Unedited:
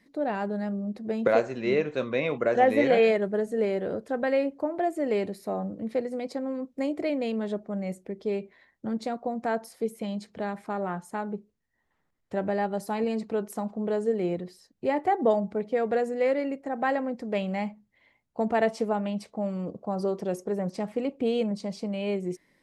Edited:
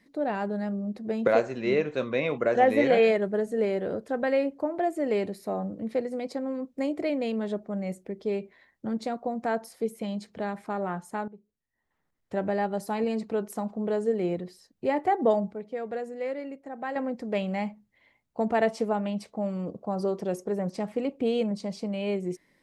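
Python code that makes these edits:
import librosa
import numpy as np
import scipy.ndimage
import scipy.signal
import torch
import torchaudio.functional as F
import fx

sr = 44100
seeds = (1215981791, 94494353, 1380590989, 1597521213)

y = fx.edit(x, sr, fx.fade_in_from(start_s=11.28, length_s=1.07, floor_db=-17.5),
    fx.clip_gain(start_s=15.51, length_s=1.45, db=-7.5), tone=tone)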